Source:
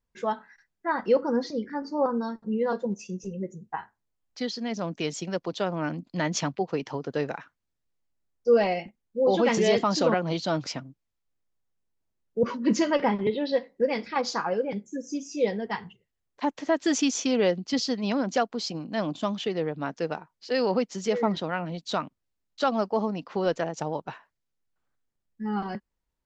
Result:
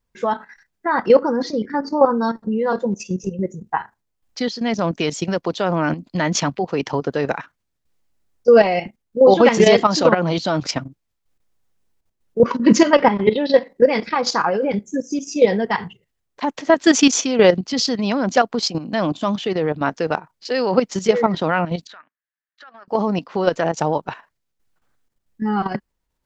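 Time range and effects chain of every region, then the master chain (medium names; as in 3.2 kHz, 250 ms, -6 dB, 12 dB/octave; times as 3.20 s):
21.87–22.88 s: band-pass filter 1.7 kHz, Q 5.7 + compression 4:1, threshold -47 dBFS
whole clip: level held to a coarse grid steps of 11 dB; dynamic bell 1.2 kHz, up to +3 dB, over -41 dBFS, Q 0.73; loudness maximiser +14 dB; trim -1 dB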